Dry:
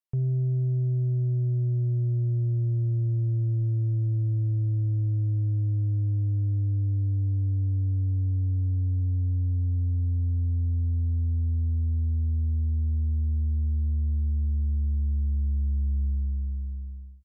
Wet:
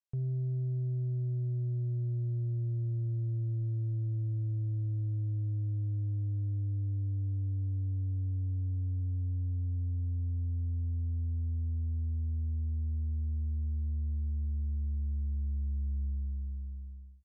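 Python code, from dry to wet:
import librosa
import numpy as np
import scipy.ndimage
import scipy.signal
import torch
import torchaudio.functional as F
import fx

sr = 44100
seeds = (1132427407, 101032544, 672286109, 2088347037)

y = scipy.signal.sosfilt(scipy.signal.ellip(4, 1.0, 40, 9100.0, 'lowpass', fs=sr, output='sos'), x)
y = y * librosa.db_to_amplitude(-6.5)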